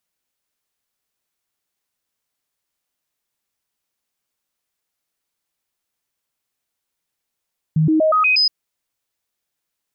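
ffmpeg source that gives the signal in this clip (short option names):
-f lavfi -i "aevalsrc='0.251*clip(min(mod(t,0.12),0.12-mod(t,0.12))/0.005,0,1)*sin(2*PI*157*pow(2,floor(t/0.12)/1)*mod(t,0.12))':d=0.72:s=44100"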